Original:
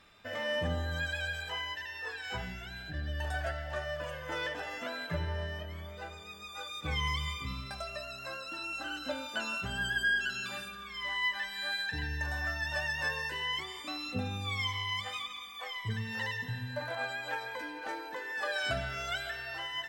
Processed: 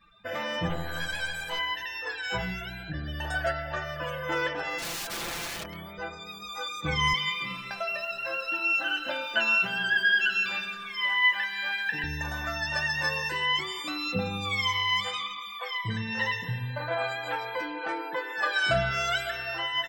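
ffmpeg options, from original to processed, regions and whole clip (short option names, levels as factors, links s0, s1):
-filter_complex "[0:a]asettb=1/sr,asplit=3[s0][s1][s2];[s0]atrim=end=0.694[s3];[s1]atrim=start=0.69:end=1.59,asetpts=PTS-STARTPTS,afade=t=in:d=0.004:c=qsin,afade=t=out:st=0.896:d=0.004:c=qsin,highshelf=f=7400:t=q:w=1.5:g=6.5,aeval=exprs='clip(val(0),-1,0.00841)':c=same[s4];[s2]atrim=start=1.586[s5];[s3][s4]acrossfade=d=0.004:c1=hsin:c2=qsin[s6];[s6][s5]acrossfade=d=0.004:c1=qsin:c2=hsin,asettb=1/sr,asplit=3[s7][s8][s9];[s7]atrim=end=4.784[s10];[s8]atrim=start=4.78:end=5.99,asetpts=PTS-STARTPTS,afade=t=in:d=0.004:c=qsin,afade=t=out:st=1.206:d=0.004:c=qsin,highpass=f=86:w=0.5412,highpass=f=86:w=1.3066,aeval=exprs='(mod(63.1*val(0)+1,2)-1)/63.1':c=same[s11];[s9]atrim=start=5.986[s12];[s10][s11]acrossfade=d=0.004:c1=hsin:c2=qsin[s13];[s13][s12]acrossfade=d=0.004:c1=qsin:c2=hsin,asettb=1/sr,asplit=3[s14][s15][s16];[s14]atrim=end=7.134[s17];[s15]atrim=start=7.13:end=12.04,asetpts=PTS-STARTPTS,afade=t=in:d=0.004:c=qsin,afade=t=out:st=4.906:d=0.004:c=qsin,highpass=f=180:w=0.5412,highpass=f=180:w=1.3066,equalizer=f=190:t=q:w=4:g=-3,equalizer=f=290:t=q:w=4:g=-6,equalizer=f=1200:t=q:w=4:g=-5,equalizer=f=1700:t=q:w=4:g=5,equalizer=f=2800:t=q:w=4:g=5,equalizer=f=4100:t=q:w=4:g=-6,lowpass=f=5700:w=0.5412,lowpass=f=5700:w=1.3066,acrusher=bits=9:dc=4:mix=0:aa=0.000001[s18];[s16]atrim=start=12.036[s19];[s17][s18]acrossfade=d=0.004:c1=hsin:c2=qsin[s20];[s20][s19]acrossfade=d=0.004:c1=qsin:c2=hsin,asettb=1/sr,asplit=3[s21][s22][s23];[s21]atrim=end=15.104[s24];[s22]atrim=start=15.1:end=18.91,asetpts=PTS-STARTPTS,afade=t=in:d=0.004:c=qsin,afade=t=out:st=3.806:d=0.004:c=qsin,highshelf=f=8500:g=-6.5,asplit=2[s25][s26];[s26]adelay=31,volume=0.282[s27];[s25][s27]amix=inputs=2:normalize=0,atrim=end_sample=168021[s28];[s23]atrim=start=18.906[s29];[s24][s28]acrossfade=d=0.004:c1=hsin:c2=qsin[s30];[s30][s29]acrossfade=d=0.004:c1=qsin:c2=hsin,afftdn=nr=22:nf=-56,aecho=1:1:5.9:0.65,volume=1.88"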